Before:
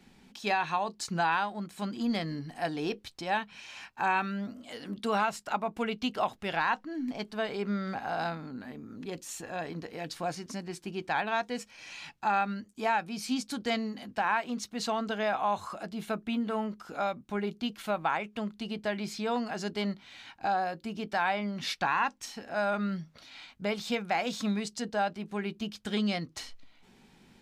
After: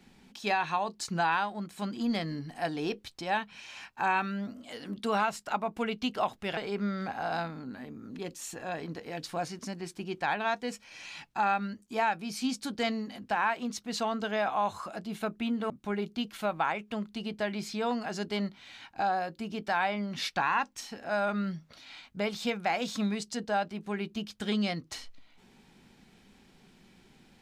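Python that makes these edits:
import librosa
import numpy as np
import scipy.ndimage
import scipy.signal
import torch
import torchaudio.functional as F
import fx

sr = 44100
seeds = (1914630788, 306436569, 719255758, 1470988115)

y = fx.edit(x, sr, fx.cut(start_s=6.57, length_s=0.87),
    fx.cut(start_s=16.57, length_s=0.58), tone=tone)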